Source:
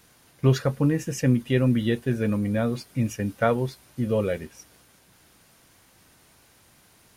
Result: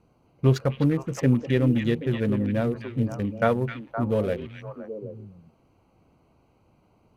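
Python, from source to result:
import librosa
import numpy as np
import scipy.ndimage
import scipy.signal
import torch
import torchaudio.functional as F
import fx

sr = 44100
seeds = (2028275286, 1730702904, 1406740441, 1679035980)

y = fx.wiener(x, sr, points=25)
y = fx.echo_stepped(y, sr, ms=259, hz=2500.0, octaves=-1.4, feedback_pct=70, wet_db=-2.0)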